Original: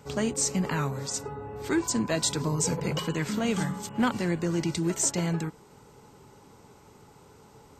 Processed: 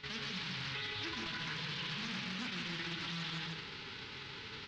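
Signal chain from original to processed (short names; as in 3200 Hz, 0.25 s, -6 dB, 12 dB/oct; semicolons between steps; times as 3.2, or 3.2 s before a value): spectral whitening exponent 0.1; dynamic EQ 330 Hz, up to -4 dB, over -46 dBFS, Q 1.1; reverse; compressor 8:1, threshold -39 dBFS, peak gain reduction 18 dB; reverse; soft clip -36.5 dBFS, distortion -15 dB; steep low-pass 4300 Hz 36 dB/oct; bell 700 Hz -14.5 dB 0.82 oct; tapped delay 76/232/270/318/508 ms -11.5/-6.5/-5.5/-18/-11 dB; time stretch by phase-locked vocoder 0.6×; de-hum 52.96 Hz, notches 29; limiter -44.5 dBFS, peak gain reduction 8.5 dB; Doppler distortion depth 0.27 ms; gain +13 dB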